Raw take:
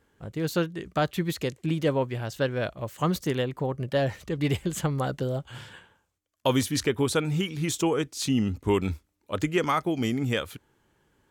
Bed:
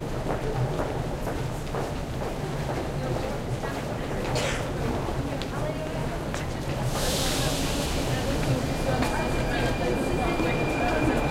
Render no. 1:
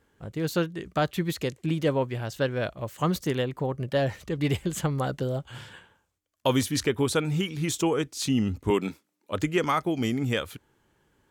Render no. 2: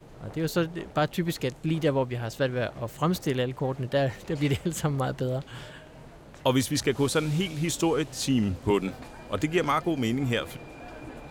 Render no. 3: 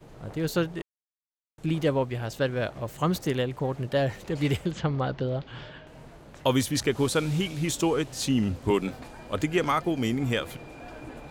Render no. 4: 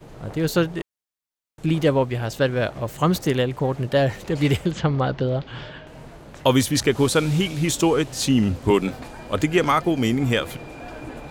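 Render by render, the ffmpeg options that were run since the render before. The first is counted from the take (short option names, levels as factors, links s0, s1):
-filter_complex "[0:a]asettb=1/sr,asplit=3[s0][s1][s2];[s0]atrim=end=8.704[s3];[s1]atrim=start=8.7:end=9.32,asetpts=PTS-STARTPTS,afade=t=in:d=0.004:c=qsin,afade=t=out:st=0.616:d=0.004:c=qsin,highpass=f=170:w=0.5412,highpass=f=170:w=1.3066[s4];[s2]atrim=start=9.316[s5];[s3][s4]acrossfade=d=0.004:c1=hsin:c2=qsin[s6];[s6][s5]acrossfade=d=0.004:c1=qsin:c2=hsin"
-filter_complex "[1:a]volume=0.126[s0];[0:a][s0]amix=inputs=2:normalize=0"
-filter_complex "[0:a]asettb=1/sr,asplit=3[s0][s1][s2];[s0]atrim=end=4.714[s3];[s1]atrim=start=4.71:end=5.87,asetpts=PTS-STARTPTS,afade=t=in:d=0.004:c=qsin,afade=t=out:st=1.156:d=0.004:c=qsin,lowpass=f=4900:w=0.5412,lowpass=f=4900:w=1.3066[s4];[s2]atrim=start=5.866[s5];[s3][s4]acrossfade=d=0.004:c1=hsin:c2=qsin[s6];[s6][s5]acrossfade=d=0.004:c1=qsin:c2=hsin,asplit=3[s7][s8][s9];[s7]atrim=end=0.82,asetpts=PTS-STARTPTS,afade=t=out:st=0.816:d=0.004:c=hsin[s10];[s8]atrim=start=0.82:end=1.58,asetpts=PTS-STARTPTS,volume=0[s11];[s9]atrim=start=1.58,asetpts=PTS-STARTPTS,afade=t=in:d=0.004:c=hsin[s12];[s10][s11][s12]concat=n=3:v=0:a=1"
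-af "volume=2"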